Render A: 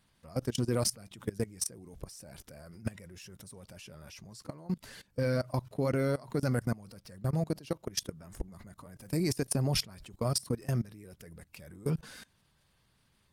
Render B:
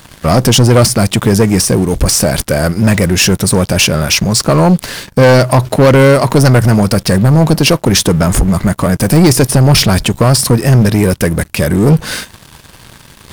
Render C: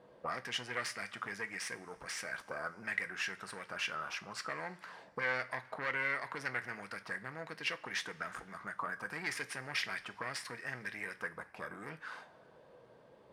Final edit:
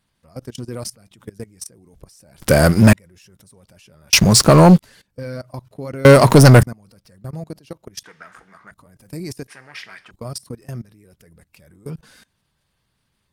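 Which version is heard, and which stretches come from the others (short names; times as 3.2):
A
2.42–2.93 from B
4.13–4.79 from B
6.05–6.63 from B
8.04–8.71 from C
9.48–10.11 from C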